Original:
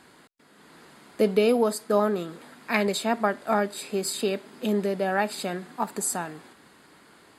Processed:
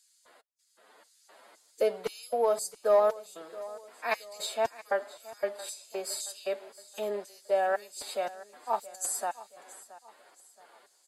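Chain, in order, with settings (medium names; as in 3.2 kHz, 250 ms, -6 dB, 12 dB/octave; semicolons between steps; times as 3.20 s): LFO high-pass square 2.9 Hz 590–6100 Hz; time stretch by phase-locked vocoder 1.5×; in parallel at -7.5 dB: overload inside the chain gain 14 dB; on the sum: feedback delay 674 ms, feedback 41%, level -18 dB; trim -8.5 dB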